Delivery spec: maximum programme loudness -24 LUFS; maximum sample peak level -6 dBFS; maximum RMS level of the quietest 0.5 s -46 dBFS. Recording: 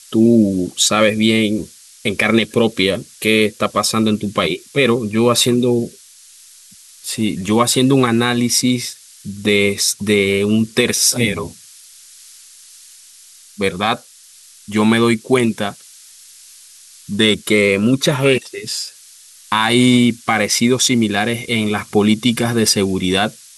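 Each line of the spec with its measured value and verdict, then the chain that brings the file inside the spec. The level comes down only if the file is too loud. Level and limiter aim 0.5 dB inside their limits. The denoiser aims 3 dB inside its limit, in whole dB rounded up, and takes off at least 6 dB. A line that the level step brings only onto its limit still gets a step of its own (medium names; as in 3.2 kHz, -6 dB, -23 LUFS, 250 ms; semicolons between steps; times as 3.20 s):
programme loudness -15.5 LUFS: fail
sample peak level -2.0 dBFS: fail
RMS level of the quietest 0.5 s -44 dBFS: fail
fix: trim -9 dB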